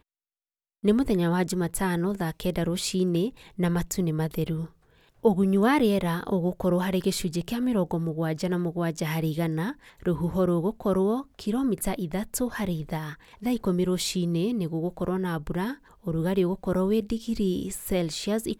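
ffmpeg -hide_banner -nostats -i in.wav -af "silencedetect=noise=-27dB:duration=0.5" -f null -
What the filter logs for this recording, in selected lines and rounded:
silence_start: 0.00
silence_end: 0.84 | silence_duration: 0.84
silence_start: 4.63
silence_end: 5.25 | silence_duration: 0.62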